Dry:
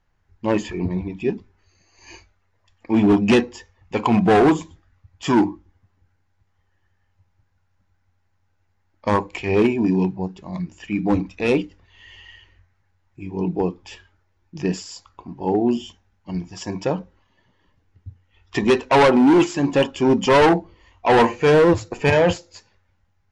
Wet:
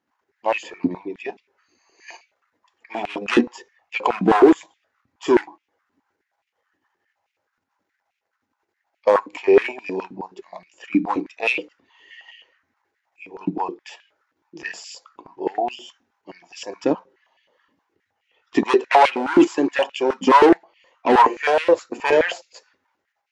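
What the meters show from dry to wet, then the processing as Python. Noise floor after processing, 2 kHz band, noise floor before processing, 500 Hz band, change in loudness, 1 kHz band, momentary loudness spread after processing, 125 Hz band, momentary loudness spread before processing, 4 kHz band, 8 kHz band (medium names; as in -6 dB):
-78 dBFS, +0.5 dB, -66 dBFS, -0.5 dB, 0.0 dB, +2.5 dB, 18 LU, -14.0 dB, 16 LU, -1.5 dB, no reading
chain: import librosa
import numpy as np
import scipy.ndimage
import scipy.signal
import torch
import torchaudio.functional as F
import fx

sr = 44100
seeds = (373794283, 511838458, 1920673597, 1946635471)

p1 = fx.level_steps(x, sr, step_db=22)
p2 = x + F.gain(torch.from_numpy(p1), 0.5).numpy()
p3 = fx.filter_held_highpass(p2, sr, hz=9.5, low_hz=270.0, high_hz=2500.0)
y = F.gain(torch.from_numpy(p3), -6.5).numpy()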